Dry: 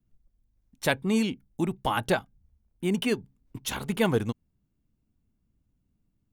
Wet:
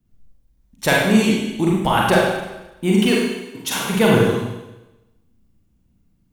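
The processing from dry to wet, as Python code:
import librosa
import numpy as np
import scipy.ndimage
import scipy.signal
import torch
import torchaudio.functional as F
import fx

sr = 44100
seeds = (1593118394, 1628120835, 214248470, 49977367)

y = fx.highpass(x, sr, hz=fx.line((3.1, 380.0), (3.9, 150.0)), slope=12, at=(3.1, 3.9), fade=0.02)
y = fx.rev_schroeder(y, sr, rt60_s=1.0, comb_ms=33, drr_db=-3.5)
y = y * librosa.db_to_amplitude(6.0)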